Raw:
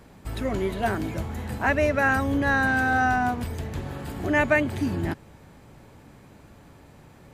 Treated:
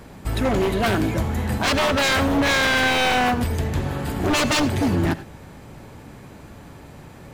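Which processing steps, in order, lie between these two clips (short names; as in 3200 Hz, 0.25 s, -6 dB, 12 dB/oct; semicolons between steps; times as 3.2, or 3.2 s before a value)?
wavefolder -22.5 dBFS; on a send: reverb, pre-delay 67 ms, DRR 15 dB; on the sum: gain +8 dB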